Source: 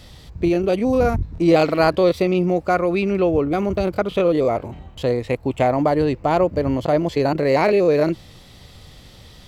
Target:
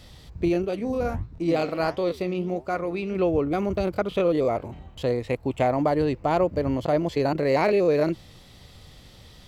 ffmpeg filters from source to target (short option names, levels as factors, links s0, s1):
-filter_complex "[0:a]asplit=3[s0][s1][s2];[s0]afade=t=out:st=0.63:d=0.02[s3];[s1]flanger=delay=7.4:depth=9.9:regen=76:speed=1.5:shape=sinusoidal,afade=t=in:st=0.63:d=0.02,afade=t=out:st=3.15:d=0.02[s4];[s2]afade=t=in:st=3.15:d=0.02[s5];[s3][s4][s5]amix=inputs=3:normalize=0,volume=0.596"